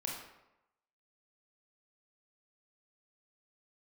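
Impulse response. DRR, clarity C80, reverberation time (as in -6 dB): -2.0 dB, 5.5 dB, 0.90 s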